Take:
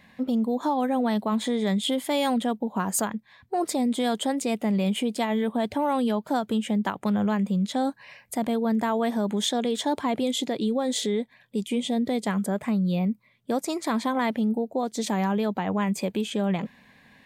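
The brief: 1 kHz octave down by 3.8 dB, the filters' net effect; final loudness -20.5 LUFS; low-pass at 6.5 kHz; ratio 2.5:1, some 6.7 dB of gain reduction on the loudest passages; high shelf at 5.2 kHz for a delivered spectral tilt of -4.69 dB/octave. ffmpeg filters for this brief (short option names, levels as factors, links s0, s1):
-af "lowpass=6500,equalizer=f=1000:t=o:g=-5.5,highshelf=f=5200:g=6.5,acompressor=threshold=0.0251:ratio=2.5,volume=4.22"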